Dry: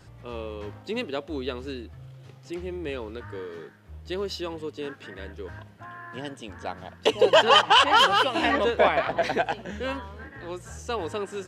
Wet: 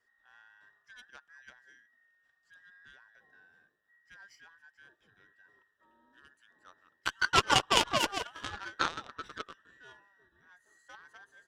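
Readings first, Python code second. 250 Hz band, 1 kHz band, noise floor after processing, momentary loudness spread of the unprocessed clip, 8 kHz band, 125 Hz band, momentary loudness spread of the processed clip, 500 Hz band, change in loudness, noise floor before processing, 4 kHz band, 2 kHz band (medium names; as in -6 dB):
-13.0 dB, -11.0 dB, -76 dBFS, 22 LU, +0.5 dB, -9.0 dB, 19 LU, -17.5 dB, -6.5 dB, -50 dBFS, -9.0 dB, -8.0 dB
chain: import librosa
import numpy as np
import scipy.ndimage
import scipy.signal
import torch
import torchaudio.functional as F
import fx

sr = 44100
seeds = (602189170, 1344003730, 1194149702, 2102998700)

y = fx.band_invert(x, sr, width_hz=2000)
y = fx.cheby_harmonics(y, sr, harmonics=(3,), levels_db=(-10,), full_scale_db=-4.0)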